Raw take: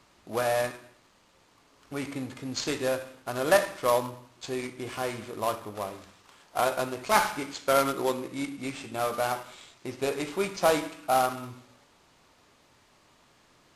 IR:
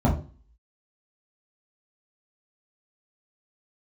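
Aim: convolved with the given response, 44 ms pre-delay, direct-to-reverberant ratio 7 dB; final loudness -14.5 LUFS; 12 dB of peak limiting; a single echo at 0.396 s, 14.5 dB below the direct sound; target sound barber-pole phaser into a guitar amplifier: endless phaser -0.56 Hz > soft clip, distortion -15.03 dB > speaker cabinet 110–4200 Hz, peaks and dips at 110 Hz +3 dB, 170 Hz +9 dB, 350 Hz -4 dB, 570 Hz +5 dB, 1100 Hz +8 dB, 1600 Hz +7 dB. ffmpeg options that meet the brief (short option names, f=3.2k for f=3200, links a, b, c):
-filter_complex "[0:a]alimiter=limit=-22dB:level=0:latency=1,aecho=1:1:396:0.188,asplit=2[a][b];[1:a]atrim=start_sample=2205,adelay=44[c];[b][c]afir=irnorm=-1:irlink=0,volume=-21.5dB[d];[a][d]amix=inputs=2:normalize=0,asplit=2[e][f];[f]afreqshift=-0.56[g];[e][g]amix=inputs=2:normalize=1,asoftclip=threshold=-26.5dB,highpass=110,equalizer=f=110:t=q:w=4:g=3,equalizer=f=170:t=q:w=4:g=9,equalizer=f=350:t=q:w=4:g=-4,equalizer=f=570:t=q:w=4:g=5,equalizer=f=1.1k:t=q:w=4:g=8,equalizer=f=1.6k:t=q:w=4:g=7,lowpass=f=4.2k:w=0.5412,lowpass=f=4.2k:w=1.3066,volume=19.5dB"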